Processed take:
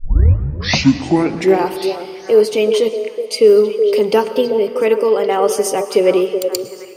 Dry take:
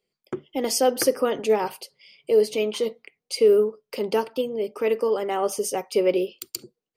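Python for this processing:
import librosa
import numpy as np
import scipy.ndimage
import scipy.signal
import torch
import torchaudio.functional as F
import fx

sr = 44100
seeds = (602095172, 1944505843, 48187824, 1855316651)

p1 = fx.tape_start_head(x, sr, length_s=1.72)
p2 = fx.rider(p1, sr, range_db=3, speed_s=0.5)
p3 = p1 + F.gain(torch.from_numpy(p2), 1.0).numpy()
p4 = fx.high_shelf(p3, sr, hz=8800.0, db=-4.0)
p5 = fx.echo_stepped(p4, sr, ms=373, hz=510.0, octaves=1.4, feedback_pct=70, wet_db=-6)
p6 = fx.rev_plate(p5, sr, seeds[0], rt60_s=2.3, hf_ratio=0.75, predelay_ms=95, drr_db=13.0)
y = F.gain(torch.from_numpy(p6), 1.5).numpy()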